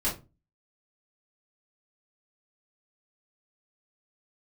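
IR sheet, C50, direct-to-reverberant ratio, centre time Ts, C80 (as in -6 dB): 9.0 dB, -8.5 dB, 26 ms, 17.0 dB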